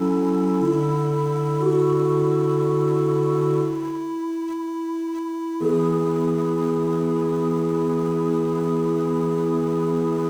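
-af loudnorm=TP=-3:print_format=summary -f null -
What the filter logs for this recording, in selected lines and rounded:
Input Integrated:    -22.2 LUFS
Input True Peak:      -9.7 dBTP
Input LRA:             2.9 LU
Input Threshold:     -32.2 LUFS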